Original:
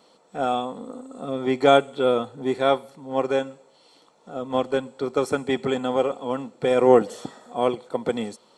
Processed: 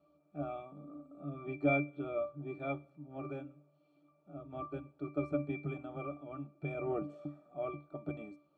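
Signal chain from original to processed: pitch-class resonator D, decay 0.26 s; trim +3.5 dB

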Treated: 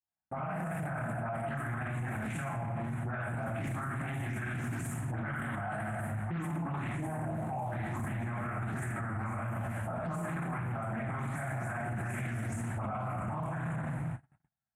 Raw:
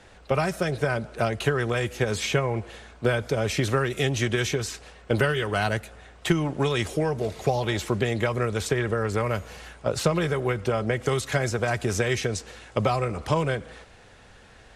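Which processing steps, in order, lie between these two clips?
delay that grows with frequency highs late, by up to 168 ms; FFT filter 210 Hz 0 dB, 310 Hz -2 dB, 470 Hz -24 dB, 670 Hz +8 dB, 1.9 kHz +5 dB, 5.1 kHz -25 dB, 8.7 kHz +9 dB, 13 kHz +6 dB; simulated room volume 640 m³, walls mixed, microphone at 3.9 m; gate -30 dBFS, range -54 dB; high-pass 92 Hz 12 dB/octave; bass shelf 430 Hz +8.5 dB; peak limiter -22 dBFS, peak gain reduction 25.5 dB; loudspeaker Doppler distortion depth 0.24 ms; trim -7 dB

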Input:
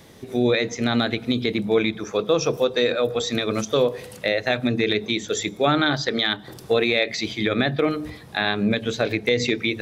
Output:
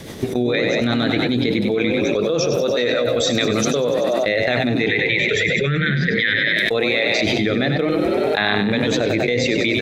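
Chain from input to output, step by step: rotary cabinet horn 7 Hz, later 0.6 Hz, at 3.21 s; gate -30 dBFS, range -22 dB; 4.88–6.56 s: FFT filter 110 Hz 0 dB, 160 Hz +7 dB, 230 Hz -18 dB, 460 Hz -2 dB, 650 Hz -27 dB, 1.1 kHz -16 dB, 1.8 kHz +8 dB, 9.9 kHz -26 dB; frequency-shifting echo 96 ms, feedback 57%, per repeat +33 Hz, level -8 dB; dynamic bell 2 kHz, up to +5 dB, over -42 dBFS, Q 6.6; level flattener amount 100%; trim -2.5 dB

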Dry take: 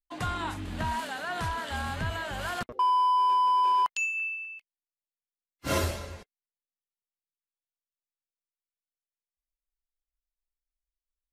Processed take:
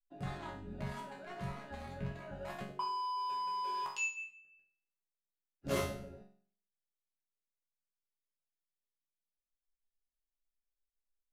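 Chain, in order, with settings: local Wiener filter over 41 samples; chord resonator C#3 sus4, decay 0.49 s; trim +14 dB

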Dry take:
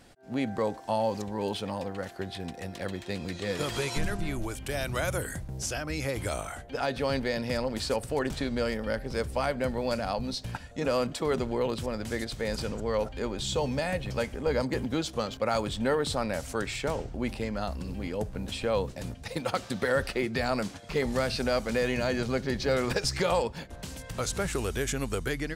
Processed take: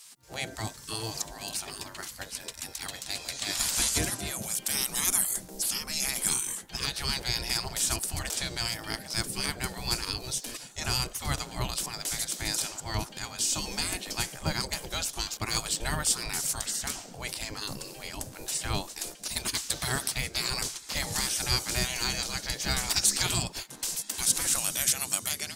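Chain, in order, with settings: spectral gate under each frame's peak -15 dB weak; tone controls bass +11 dB, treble +15 dB; trim +2 dB

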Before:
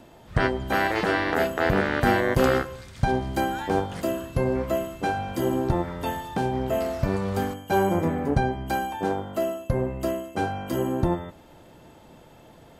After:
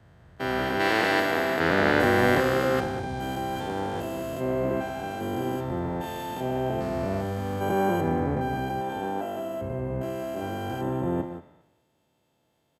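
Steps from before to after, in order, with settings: spectrogram pixelated in time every 400 ms; high-pass 78 Hz; echo from a far wall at 33 m, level -9 dB; in parallel at 0 dB: level held to a coarse grid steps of 18 dB; on the sum: three bands expanded up and down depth 100%; trim -2 dB

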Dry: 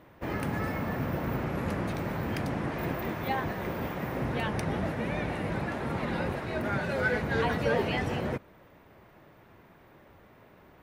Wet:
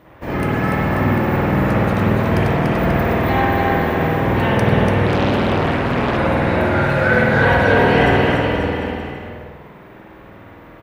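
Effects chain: bouncing-ball echo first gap 290 ms, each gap 0.85×, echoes 5; spring tank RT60 1.2 s, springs 50 ms, chirp 55 ms, DRR -6.5 dB; 5.06–6.17 s: loudspeaker Doppler distortion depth 0.94 ms; trim +5.5 dB

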